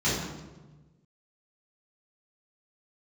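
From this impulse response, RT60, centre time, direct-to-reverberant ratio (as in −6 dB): 1.2 s, 71 ms, −11.5 dB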